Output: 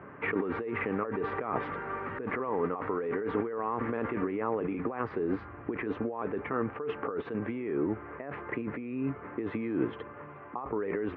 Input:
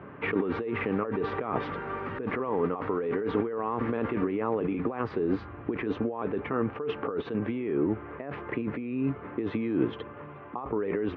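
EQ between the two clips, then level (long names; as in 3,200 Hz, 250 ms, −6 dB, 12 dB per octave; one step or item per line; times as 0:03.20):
drawn EQ curve 190 Hz 0 dB, 2,000 Hz +5 dB, 3,700 Hz −6 dB
−4.5 dB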